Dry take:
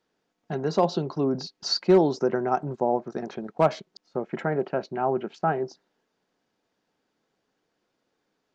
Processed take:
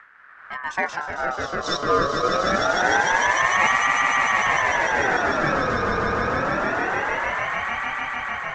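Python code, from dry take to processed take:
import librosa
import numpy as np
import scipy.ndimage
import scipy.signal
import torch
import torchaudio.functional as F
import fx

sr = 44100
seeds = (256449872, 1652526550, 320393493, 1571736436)

y = fx.dmg_wind(x, sr, seeds[0], corner_hz=290.0, level_db=-39.0)
y = fx.echo_swell(y, sr, ms=150, loudest=8, wet_db=-4.5)
y = fx.ring_lfo(y, sr, carrier_hz=1200.0, swing_pct=30, hz=0.25)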